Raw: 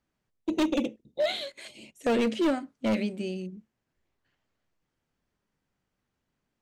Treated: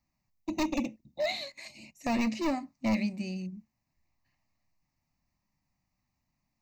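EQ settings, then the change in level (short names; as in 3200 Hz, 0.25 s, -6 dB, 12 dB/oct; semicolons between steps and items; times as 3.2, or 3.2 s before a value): low shelf 460 Hz +3 dB; high shelf 5200 Hz +6.5 dB; fixed phaser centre 2200 Hz, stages 8; 0.0 dB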